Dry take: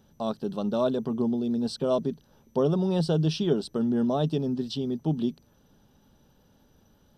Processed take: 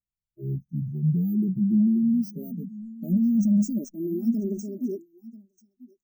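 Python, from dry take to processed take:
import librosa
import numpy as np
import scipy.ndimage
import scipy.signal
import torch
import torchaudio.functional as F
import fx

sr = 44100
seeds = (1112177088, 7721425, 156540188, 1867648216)

y = fx.speed_glide(x, sr, from_pct=50, to_pct=188)
y = np.repeat(scipy.signal.resample_poly(y, 1, 3), 3)[:len(y)]
y = fx.fixed_phaser(y, sr, hz=2500.0, stages=8)
y = y + 0.58 * np.pad(y, (int(5.1 * sr / 1000.0), 0))[:len(y)]
y = fx.dynamic_eq(y, sr, hz=570.0, q=1.5, threshold_db=-43.0, ratio=4.0, max_db=-4)
y = np.clip(y, -10.0 ** (-23.5 / 20.0), 10.0 ** (-23.5 / 20.0))
y = fx.transient(y, sr, attack_db=0, sustain_db=7)
y = y + 10.0 ** (-12.0 / 20.0) * np.pad(y, (int(990 * sr / 1000.0), 0))[:len(y)]
y = fx.noise_reduce_blind(y, sr, reduce_db=16)
y = scipy.signal.sosfilt(scipy.signal.ellip(3, 1.0, 40, [520.0, 6400.0], 'bandstop', fs=sr, output='sos'), y)
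y = fx.high_shelf(y, sr, hz=7300.0, db=3.0)
y = fx.spectral_expand(y, sr, expansion=1.5)
y = y * librosa.db_to_amplitude(4.5)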